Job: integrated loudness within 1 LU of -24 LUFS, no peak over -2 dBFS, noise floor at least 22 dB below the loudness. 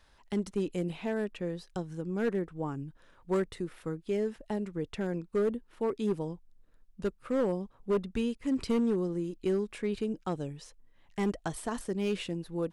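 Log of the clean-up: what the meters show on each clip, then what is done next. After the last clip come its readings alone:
clipped samples 1.3%; clipping level -23.0 dBFS; loudness -33.5 LUFS; peak level -23.0 dBFS; loudness target -24.0 LUFS
-> clip repair -23 dBFS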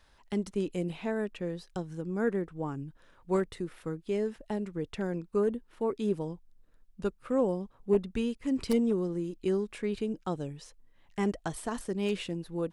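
clipped samples 0.0%; loudness -33.0 LUFS; peak level -14.0 dBFS; loudness target -24.0 LUFS
-> trim +9 dB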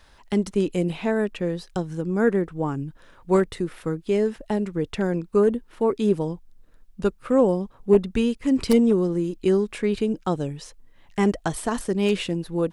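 loudness -24.0 LUFS; peak level -5.0 dBFS; noise floor -54 dBFS

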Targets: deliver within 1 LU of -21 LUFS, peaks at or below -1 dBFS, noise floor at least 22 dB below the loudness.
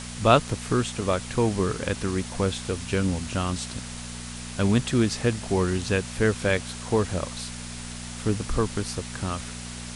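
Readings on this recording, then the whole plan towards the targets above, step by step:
hum 60 Hz; highest harmonic 240 Hz; hum level -36 dBFS; noise floor -37 dBFS; noise floor target -49 dBFS; loudness -26.5 LUFS; peak level -4.0 dBFS; loudness target -21.0 LUFS
-> de-hum 60 Hz, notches 4; noise reduction 12 dB, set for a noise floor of -37 dBFS; trim +5.5 dB; peak limiter -1 dBFS

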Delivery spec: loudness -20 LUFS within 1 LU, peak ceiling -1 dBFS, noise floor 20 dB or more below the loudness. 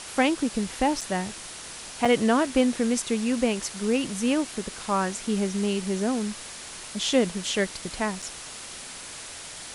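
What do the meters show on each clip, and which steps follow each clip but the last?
dropouts 3; longest dropout 4.7 ms; noise floor -40 dBFS; noise floor target -46 dBFS; loudness -26.0 LUFS; peak level -9.0 dBFS; loudness target -20.0 LUFS
-> interpolate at 1.01/2.05/8.22 s, 4.7 ms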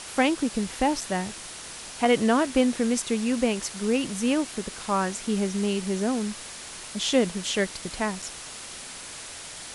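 dropouts 0; noise floor -40 dBFS; noise floor target -46 dBFS
-> noise print and reduce 6 dB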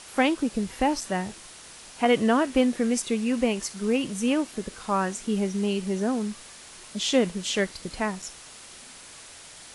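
noise floor -46 dBFS; loudness -26.0 LUFS; peak level -9.0 dBFS; loudness target -20.0 LUFS
-> trim +6 dB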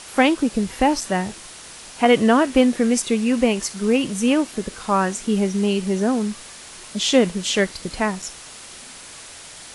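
loudness -20.0 LUFS; peak level -3.0 dBFS; noise floor -40 dBFS

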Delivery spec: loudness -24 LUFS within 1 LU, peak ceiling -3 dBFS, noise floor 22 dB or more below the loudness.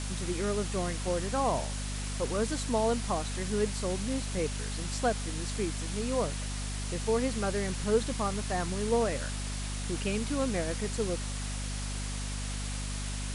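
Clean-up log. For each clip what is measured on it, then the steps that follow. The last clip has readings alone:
hum 50 Hz; highest harmonic 250 Hz; hum level -33 dBFS; noise floor -35 dBFS; noise floor target -54 dBFS; loudness -32.0 LUFS; peak level -15.0 dBFS; loudness target -24.0 LUFS
-> hum notches 50/100/150/200/250 Hz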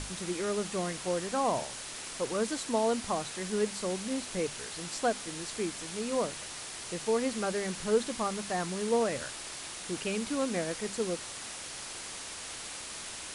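hum not found; noise floor -42 dBFS; noise floor target -55 dBFS
-> noise print and reduce 13 dB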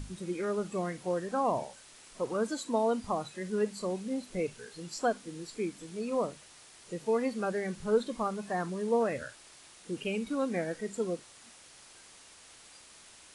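noise floor -55 dBFS; noise floor target -56 dBFS
-> noise print and reduce 6 dB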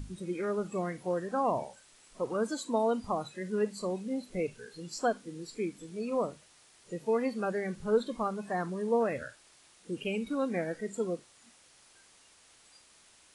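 noise floor -61 dBFS; loudness -33.5 LUFS; peak level -16.5 dBFS; loudness target -24.0 LUFS
-> trim +9.5 dB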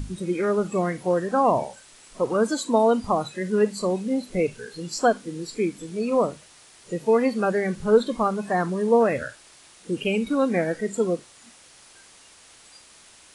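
loudness -24.0 LUFS; peak level -7.0 dBFS; noise floor -52 dBFS

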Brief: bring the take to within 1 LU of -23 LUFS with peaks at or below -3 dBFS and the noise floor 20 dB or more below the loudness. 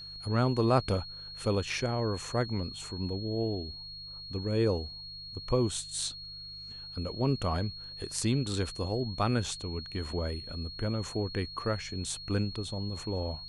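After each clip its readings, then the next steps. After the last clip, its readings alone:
hum 50 Hz; highest harmonic 150 Hz; hum level -54 dBFS; steady tone 4.3 kHz; tone level -42 dBFS; loudness -32.5 LUFS; peak level -13.0 dBFS; loudness target -23.0 LUFS
-> de-hum 50 Hz, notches 3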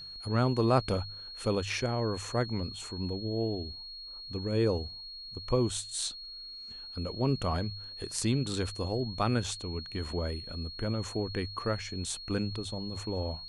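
hum not found; steady tone 4.3 kHz; tone level -42 dBFS
-> band-stop 4.3 kHz, Q 30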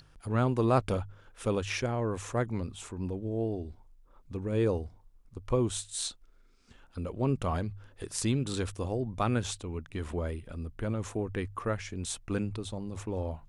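steady tone not found; loudness -33.0 LUFS; peak level -13.5 dBFS; loudness target -23.0 LUFS
-> trim +10 dB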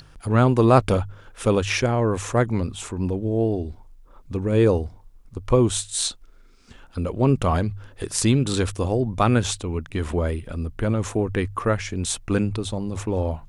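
loudness -23.0 LUFS; peak level -3.5 dBFS; noise floor -49 dBFS

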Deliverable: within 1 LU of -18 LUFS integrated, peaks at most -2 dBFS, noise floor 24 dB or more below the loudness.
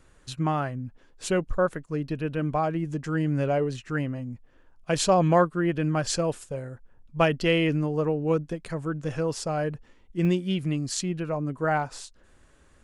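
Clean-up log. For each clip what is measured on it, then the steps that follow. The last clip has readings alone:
dropouts 2; longest dropout 1.1 ms; loudness -27.0 LUFS; peak level -8.5 dBFS; loudness target -18.0 LUFS
-> interpolate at 1.24/10.25 s, 1.1 ms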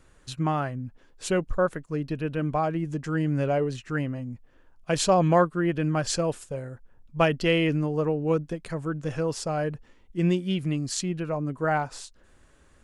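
dropouts 0; loudness -27.0 LUFS; peak level -8.5 dBFS; loudness target -18.0 LUFS
-> trim +9 dB; peak limiter -2 dBFS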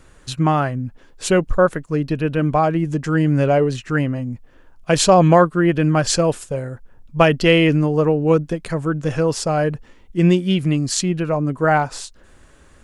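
loudness -18.0 LUFS; peak level -2.0 dBFS; noise floor -49 dBFS

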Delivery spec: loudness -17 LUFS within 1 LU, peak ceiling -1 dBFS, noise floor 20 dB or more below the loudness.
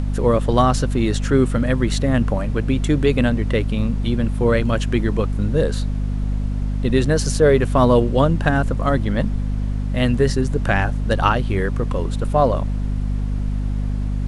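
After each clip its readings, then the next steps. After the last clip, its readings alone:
hum 50 Hz; highest harmonic 250 Hz; hum level -19 dBFS; noise floor -23 dBFS; noise floor target -40 dBFS; loudness -20.0 LUFS; peak level -1.0 dBFS; loudness target -17.0 LUFS
-> hum notches 50/100/150/200/250 Hz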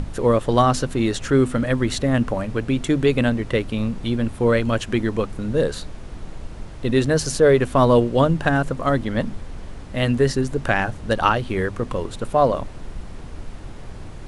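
hum not found; noise floor -36 dBFS; noise floor target -41 dBFS
-> noise print and reduce 6 dB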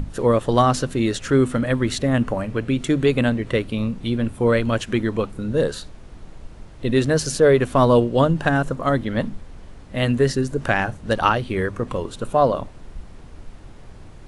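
noise floor -42 dBFS; loudness -20.5 LUFS; peak level -2.5 dBFS; loudness target -17.0 LUFS
-> trim +3.5 dB; peak limiter -1 dBFS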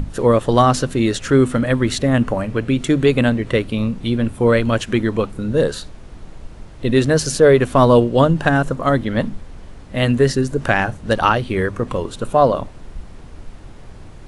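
loudness -17.0 LUFS; peak level -1.0 dBFS; noise floor -38 dBFS

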